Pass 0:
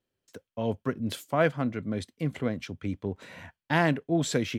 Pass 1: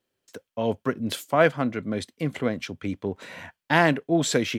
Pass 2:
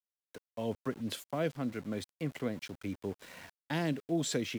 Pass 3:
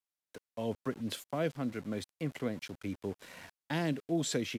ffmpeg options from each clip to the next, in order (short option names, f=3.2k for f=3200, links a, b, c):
-af "lowshelf=f=160:g=-10,volume=6dB"
-filter_complex "[0:a]acrossover=split=490|3000[a][b][c];[b]acompressor=threshold=-32dB:ratio=6[d];[a][d][c]amix=inputs=3:normalize=0,aeval=exprs='val(0)*gte(abs(val(0)),0.00944)':c=same,volume=-8.5dB"
-af "aresample=32000,aresample=44100"